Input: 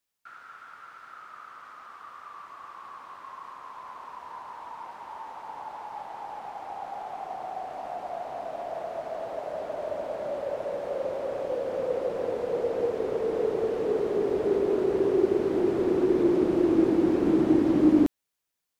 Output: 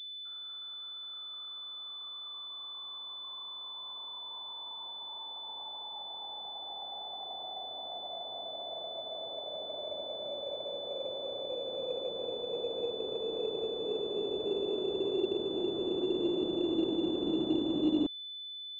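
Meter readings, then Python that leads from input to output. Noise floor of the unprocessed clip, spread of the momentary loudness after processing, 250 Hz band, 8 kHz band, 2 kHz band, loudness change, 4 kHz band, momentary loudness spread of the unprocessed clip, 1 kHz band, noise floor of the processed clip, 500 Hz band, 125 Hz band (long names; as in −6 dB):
−83 dBFS, 9 LU, −9.0 dB, can't be measured, below −15 dB, −9.0 dB, +17.5 dB, 21 LU, −10.5 dB, −44 dBFS, −8.5 dB, −11.0 dB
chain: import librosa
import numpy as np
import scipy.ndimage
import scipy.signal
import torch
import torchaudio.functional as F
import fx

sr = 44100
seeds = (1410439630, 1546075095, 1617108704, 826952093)

y = fx.tilt_shelf(x, sr, db=-9.0, hz=710.0)
y = fx.filter_sweep_lowpass(y, sr, from_hz=540.0, to_hz=1300.0, start_s=18.03, end_s=18.53, q=0.71)
y = fx.pwm(y, sr, carrier_hz=3500.0)
y = y * librosa.db_to_amplitude(-3.0)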